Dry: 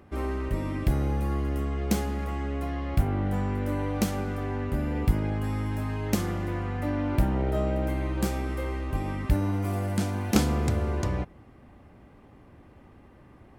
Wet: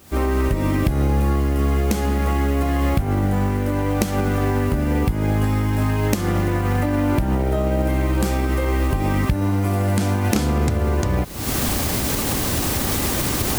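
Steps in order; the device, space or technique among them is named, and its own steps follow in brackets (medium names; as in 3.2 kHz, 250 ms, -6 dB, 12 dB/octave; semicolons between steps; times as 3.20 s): cheap recorder with automatic gain (white noise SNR 26 dB; recorder AGC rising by 72 dB/s)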